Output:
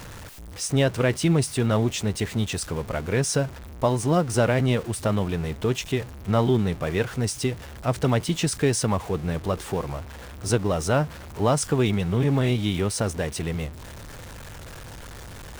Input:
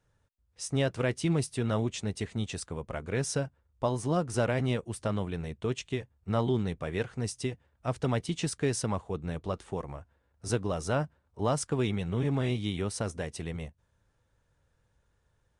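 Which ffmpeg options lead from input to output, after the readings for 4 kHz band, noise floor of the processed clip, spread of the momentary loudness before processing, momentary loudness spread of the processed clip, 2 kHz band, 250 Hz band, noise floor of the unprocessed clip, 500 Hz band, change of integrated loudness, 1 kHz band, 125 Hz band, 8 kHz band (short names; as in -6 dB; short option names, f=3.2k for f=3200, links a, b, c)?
+8.5 dB, -40 dBFS, 9 LU, 19 LU, +7.5 dB, +7.5 dB, -73 dBFS, +7.5 dB, +7.5 dB, +7.5 dB, +7.5 dB, +8.5 dB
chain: -af "aeval=exprs='val(0)+0.5*0.00944*sgn(val(0))':c=same,volume=6.5dB"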